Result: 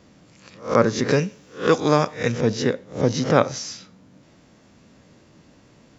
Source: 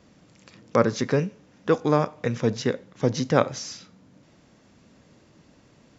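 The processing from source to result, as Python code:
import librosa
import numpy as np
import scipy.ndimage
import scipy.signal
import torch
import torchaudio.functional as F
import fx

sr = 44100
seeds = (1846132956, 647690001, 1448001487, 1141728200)

y = fx.spec_swells(x, sr, rise_s=0.32)
y = fx.high_shelf(y, sr, hz=2700.0, db=11.0, at=(1.08, 2.32))
y = y * librosa.db_to_amplitude(2.0)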